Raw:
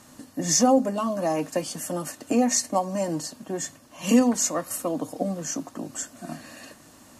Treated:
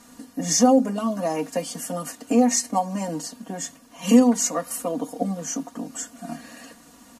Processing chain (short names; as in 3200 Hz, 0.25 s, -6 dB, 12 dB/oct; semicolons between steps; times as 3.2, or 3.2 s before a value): comb 4.2 ms, depth 88%; gain -1.5 dB